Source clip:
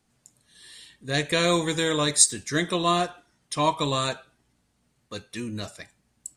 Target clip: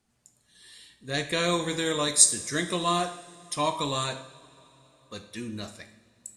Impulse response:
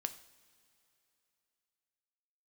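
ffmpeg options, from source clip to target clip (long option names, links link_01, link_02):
-filter_complex "[0:a]asettb=1/sr,asplit=3[link_01][link_02][link_03];[link_01]atrim=end=1.854[link_04];[link_02]atrim=start=1.85:end=4.04,asetpts=PTS-STARTPTS,afade=type=in:duration=0.004:curve=qsin,afade=type=out:start_time=2.186:duration=0.004:curve=qsin,highshelf=frequency=8500:gain=8[link_05];[link_03]atrim=start=4.036[link_06];[link_04][link_05]acrossfade=duration=0.004:curve1=hsin:curve2=qsin[link_07];[link_07][link_06]acrossfade=duration=0.004:curve1=qsin:curve2=hsin[link_08];[1:a]atrim=start_sample=2205,asetrate=35721,aresample=44100[link_09];[link_08][link_09]afir=irnorm=-1:irlink=0,volume=-3.5dB"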